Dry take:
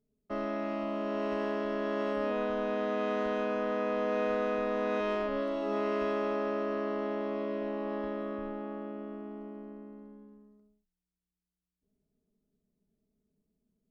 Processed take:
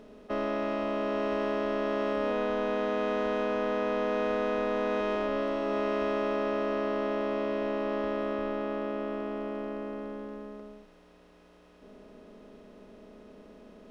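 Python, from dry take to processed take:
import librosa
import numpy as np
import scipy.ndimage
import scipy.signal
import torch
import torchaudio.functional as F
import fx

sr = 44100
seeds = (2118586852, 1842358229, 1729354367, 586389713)

y = fx.bin_compress(x, sr, power=0.4)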